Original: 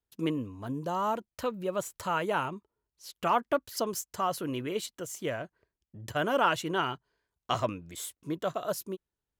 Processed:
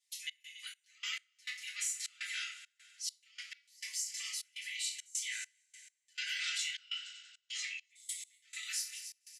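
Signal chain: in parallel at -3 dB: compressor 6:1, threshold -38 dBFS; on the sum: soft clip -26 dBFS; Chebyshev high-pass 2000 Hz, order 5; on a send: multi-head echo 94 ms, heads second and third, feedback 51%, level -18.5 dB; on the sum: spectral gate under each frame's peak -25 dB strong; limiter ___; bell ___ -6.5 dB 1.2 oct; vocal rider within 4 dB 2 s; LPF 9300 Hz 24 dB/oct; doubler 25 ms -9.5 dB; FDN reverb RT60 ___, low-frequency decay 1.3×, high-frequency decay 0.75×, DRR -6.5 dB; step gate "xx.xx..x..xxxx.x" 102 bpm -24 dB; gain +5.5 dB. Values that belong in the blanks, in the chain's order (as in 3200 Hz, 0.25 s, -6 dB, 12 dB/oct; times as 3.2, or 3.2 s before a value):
-35.5 dBFS, 2900 Hz, 0.48 s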